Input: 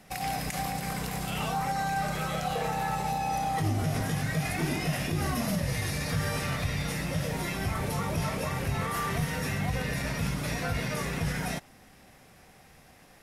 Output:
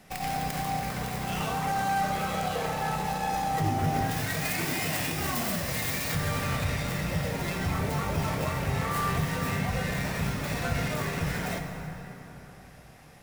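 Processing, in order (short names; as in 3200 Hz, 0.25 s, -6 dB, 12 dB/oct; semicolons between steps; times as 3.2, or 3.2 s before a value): tracing distortion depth 0.27 ms; 4.11–6.15 tilt +2 dB/oct; plate-style reverb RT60 4 s, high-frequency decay 0.5×, DRR 3.5 dB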